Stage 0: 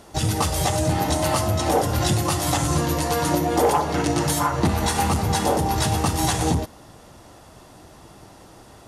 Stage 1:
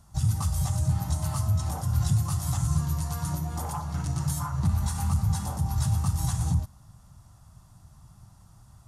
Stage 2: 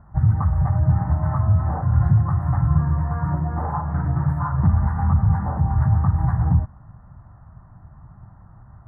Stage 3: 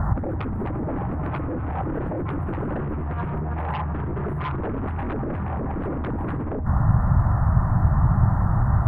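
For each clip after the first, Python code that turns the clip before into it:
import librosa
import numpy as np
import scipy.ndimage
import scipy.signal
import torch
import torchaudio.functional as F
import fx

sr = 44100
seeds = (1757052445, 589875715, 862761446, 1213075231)

y1 = fx.curve_eq(x, sr, hz=(130.0, 190.0, 300.0, 460.0, 660.0, 1200.0, 1900.0, 2800.0, 7200.0), db=(0, -7, -23, -29, -19, -11, -20, -20, -9))
y2 = scipy.signal.sosfilt(scipy.signal.ellip(4, 1.0, 40, 1800.0, 'lowpass', fs=sr, output='sos'), y1)
y2 = y2 * librosa.db_to_amplitude(8.5)
y3 = fx.fold_sine(y2, sr, drive_db=14, ceiling_db=-6.5)
y3 = fx.over_compress(y3, sr, threshold_db=-22.0, ratio=-1.0)
y3 = y3 * librosa.db_to_amplitude(-2.0)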